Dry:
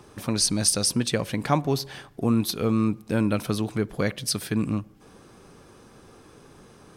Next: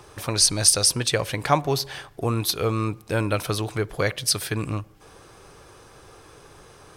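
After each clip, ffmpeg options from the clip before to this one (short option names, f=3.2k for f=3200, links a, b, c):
-af "equalizer=f=220:t=o:w=0.92:g=-14.5,volume=5dB"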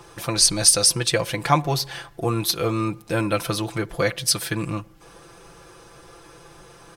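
-af "aecho=1:1:5.9:0.69"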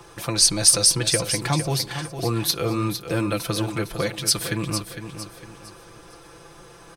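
-filter_complex "[0:a]acrossover=split=400|3000[a][b][c];[b]acompressor=threshold=-27dB:ratio=6[d];[a][d][c]amix=inputs=3:normalize=0,asplit=2[e][f];[f]aecho=0:1:456|912|1368|1824:0.335|0.121|0.0434|0.0156[g];[e][g]amix=inputs=2:normalize=0"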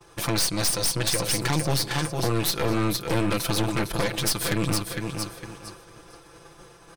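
-af "acompressor=threshold=-23dB:ratio=6,agate=range=-33dB:threshold=-39dB:ratio=3:detection=peak,aeval=exprs='0.237*(cos(1*acos(clip(val(0)/0.237,-1,1)))-cos(1*PI/2))+0.075*(cos(3*acos(clip(val(0)/0.237,-1,1)))-cos(3*PI/2))+0.0237*(cos(4*acos(clip(val(0)/0.237,-1,1)))-cos(4*PI/2))+0.075*(cos(5*acos(clip(val(0)/0.237,-1,1)))-cos(5*PI/2))+0.0299*(cos(8*acos(clip(val(0)/0.237,-1,1)))-cos(8*PI/2))':c=same"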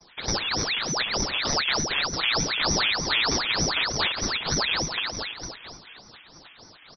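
-filter_complex "[0:a]asplit=2[a][b];[b]aecho=0:1:229:0.447[c];[a][c]amix=inputs=2:normalize=0,lowpass=f=2.6k:t=q:w=0.5098,lowpass=f=2.6k:t=q:w=0.6013,lowpass=f=2.6k:t=q:w=0.9,lowpass=f=2.6k:t=q:w=2.563,afreqshift=-3100,aeval=exprs='val(0)*sin(2*PI*1600*n/s+1600*0.85/3.3*sin(2*PI*3.3*n/s))':c=same,volume=2dB"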